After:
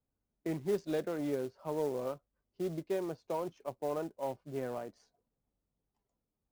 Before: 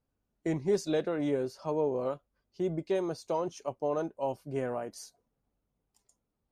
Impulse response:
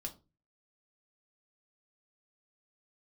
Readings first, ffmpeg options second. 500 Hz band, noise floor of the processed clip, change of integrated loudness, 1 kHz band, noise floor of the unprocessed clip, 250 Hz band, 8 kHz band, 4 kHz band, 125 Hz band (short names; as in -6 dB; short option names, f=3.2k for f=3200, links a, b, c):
-4.5 dB, under -85 dBFS, -4.5 dB, -4.5 dB, -83 dBFS, -4.5 dB, -7.5 dB, -7.0 dB, -5.0 dB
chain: -filter_complex "[0:a]acrossover=split=120|4800[a][b][c];[a]alimiter=level_in=26.5dB:limit=-24dB:level=0:latency=1,volume=-26.5dB[d];[d][b][c]amix=inputs=3:normalize=0,adynamicsmooth=sensitivity=6:basefreq=1.9k,acrusher=bits=5:mode=log:mix=0:aa=0.000001,volume=-4.5dB"